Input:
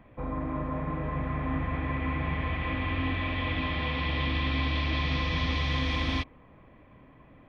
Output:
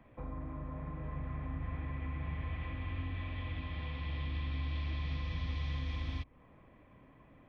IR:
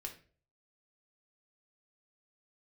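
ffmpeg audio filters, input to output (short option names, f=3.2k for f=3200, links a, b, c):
-filter_complex "[0:a]acrossover=split=140[a][b];[b]acompressor=threshold=-40dB:ratio=6[c];[a][c]amix=inputs=2:normalize=0,volume=-5.5dB"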